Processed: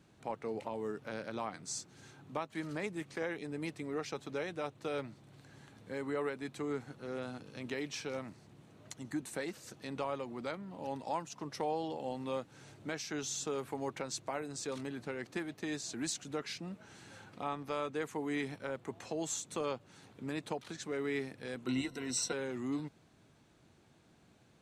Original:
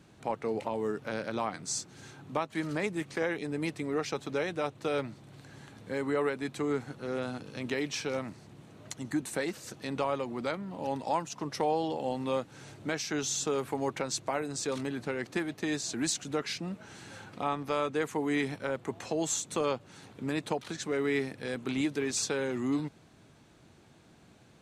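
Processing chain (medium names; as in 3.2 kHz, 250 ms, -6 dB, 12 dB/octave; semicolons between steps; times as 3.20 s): 21.66–22.33 s: rippled EQ curve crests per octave 2, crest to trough 16 dB; trim -6.5 dB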